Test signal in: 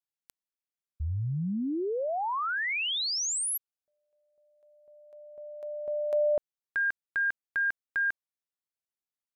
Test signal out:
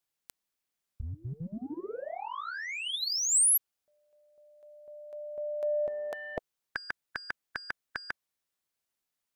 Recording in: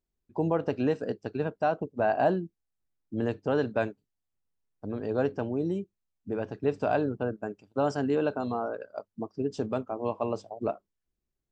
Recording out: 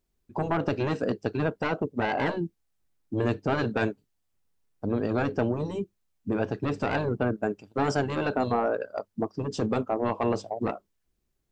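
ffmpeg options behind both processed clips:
-af "asoftclip=type=tanh:threshold=-21.5dB,afftfilt=real='re*lt(hypot(re,im),0.224)':imag='im*lt(hypot(re,im),0.224)':win_size=1024:overlap=0.75,volume=8dB"

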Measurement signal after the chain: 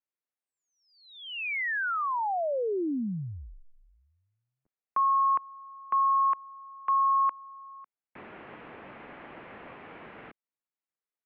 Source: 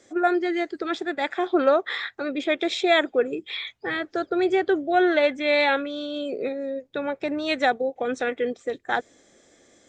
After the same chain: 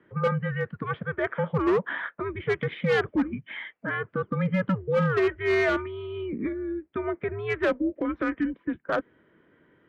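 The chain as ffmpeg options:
-af "highpass=f=390:t=q:w=0.5412,highpass=f=390:t=q:w=1.307,lowpass=f=2.8k:t=q:w=0.5176,lowpass=f=2.8k:t=q:w=0.7071,lowpass=f=2.8k:t=q:w=1.932,afreqshift=-200,asoftclip=type=hard:threshold=-18.5dB,aemphasis=mode=reproduction:type=50kf"

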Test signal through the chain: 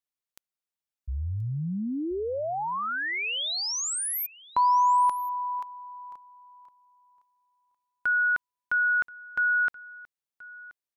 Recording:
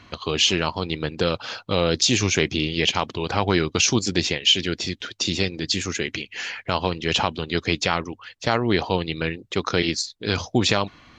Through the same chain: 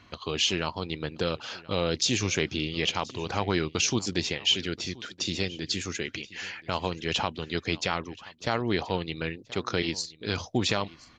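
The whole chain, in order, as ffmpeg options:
-af "aecho=1:1:1028:0.0891,volume=-6.5dB"

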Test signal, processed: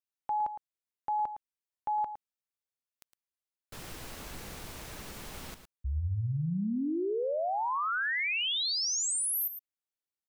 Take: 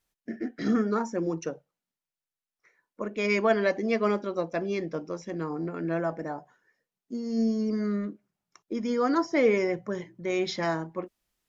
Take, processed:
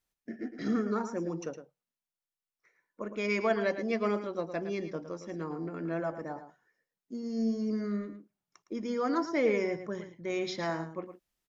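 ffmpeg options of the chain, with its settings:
-af "aecho=1:1:111:0.299,volume=-5dB"

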